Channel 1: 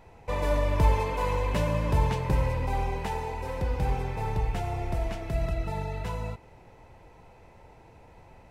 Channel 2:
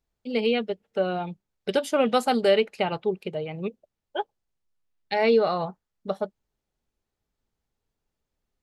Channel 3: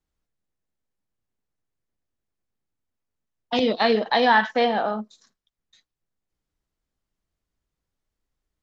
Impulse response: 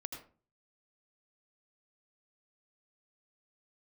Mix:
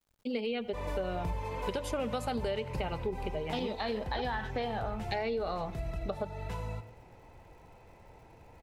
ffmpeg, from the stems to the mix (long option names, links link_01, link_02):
-filter_complex "[0:a]adelay=450,volume=-5.5dB,asplit=2[link_01][link_02];[link_02]volume=-5dB[link_03];[1:a]volume=1dB,asplit=3[link_04][link_05][link_06];[link_05]volume=-13.5dB[link_07];[2:a]lowshelf=frequency=120:gain=4.5,volume=-3dB[link_08];[link_06]apad=whole_len=394752[link_09];[link_01][link_09]sidechaincompress=threshold=-22dB:ratio=8:attack=16:release=122[link_10];[link_04][link_08]amix=inputs=2:normalize=0,acrusher=bits=11:mix=0:aa=0.000001,alimiter=limit=-14.5dB:level=0:latency=1,volume=0dB[link_11];[3:a]atrim=start_sample=2205[link_12];[link_03][link_07]amix=inputs=2:normalize=0[link_13];[link_13][link_12]afir=irnorm=-1:irlink=0[link_14];[link_10][link_11][link_14]amix=inputs=3:normalize=0,acompressor=threshold=-33dB:ratio=4"